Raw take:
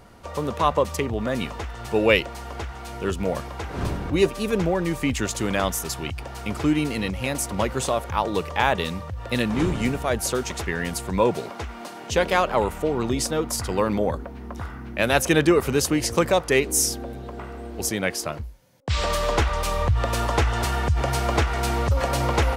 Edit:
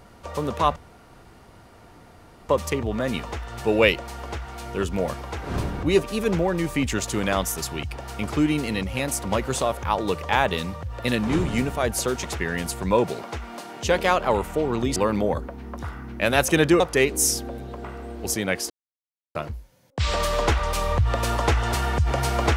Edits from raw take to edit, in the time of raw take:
0.76 s: insert room tone 1.73 s
13.23–13.73 s: delete
15.57–16.35 s: delete
18.25 s: insert silence 0.65 s

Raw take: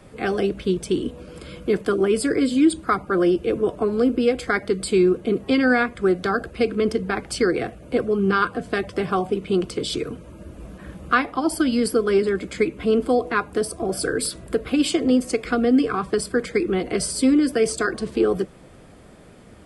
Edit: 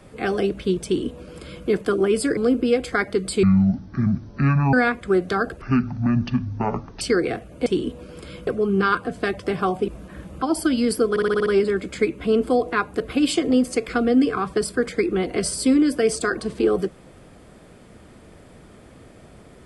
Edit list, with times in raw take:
0.85–1.66 s: copy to 7.97 s
2.37–3.92 s: delete
4.98–5.67 s: speed 53%
6.55–7.32 s: speed 55%
9.38–10.58 s: delete
11.12–11.37 s: delete
12.05 s: stutter 0.06 s, 7 plays
13.59–14.57 s: delete

